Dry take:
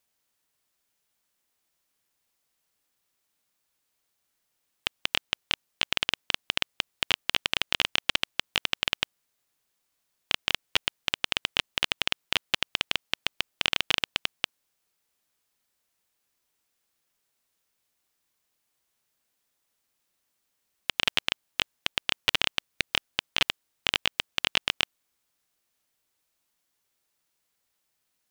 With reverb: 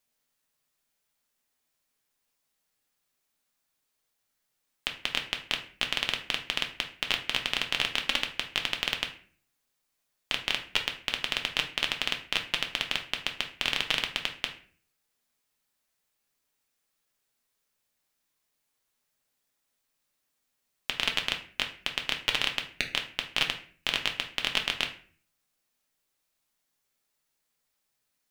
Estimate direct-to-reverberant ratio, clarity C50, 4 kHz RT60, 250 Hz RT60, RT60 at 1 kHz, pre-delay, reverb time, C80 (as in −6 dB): 3.0 dB, 10.5 dB, 0.35 s, 0.65 s, 0.40 s, 4 ms, 0.45 s, 15.0 dB